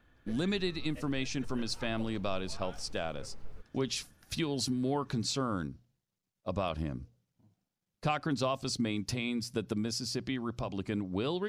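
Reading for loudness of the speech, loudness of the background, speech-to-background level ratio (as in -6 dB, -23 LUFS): -35.0 LUFS, -52.0 LUFS, 17.0 dB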